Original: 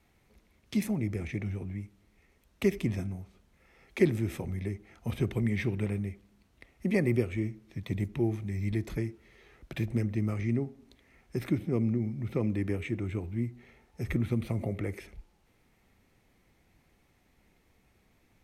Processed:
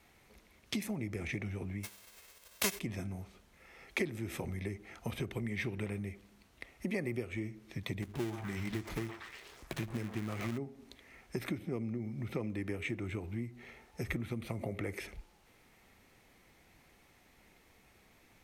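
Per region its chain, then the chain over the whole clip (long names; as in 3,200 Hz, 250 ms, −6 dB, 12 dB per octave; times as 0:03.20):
0:01.83–0:02.78: spectral envelope flattened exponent 0.3 + parametric band 200 Hz +3.5 dB 0.35 octaves + comb filter 1.9 ms, depth 39%
0:08.02–0:10.58: gap after every zero crossing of 0.26 ms + mains-hum notches 50/100/150 Hz + echo through a band-pass that steps 119 ms, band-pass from 900 Hz, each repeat 0.7 octaves, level −2 dB
whole clip: downward compressor 5 to 1, threshold −36 dBFS; low-shelf EQ 340 Hz −8 dB; level +6.5 dB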